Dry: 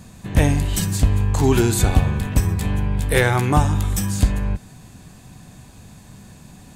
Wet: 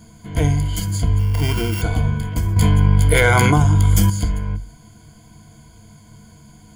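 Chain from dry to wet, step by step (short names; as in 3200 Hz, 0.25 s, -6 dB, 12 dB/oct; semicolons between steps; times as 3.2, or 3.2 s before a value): 1.19–1.82 sample sorter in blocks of 16 samples; ripple EQ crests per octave 1.8, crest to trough 16 dB; 2.56–4.1 fast leveller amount 100%; gain -5.5 dB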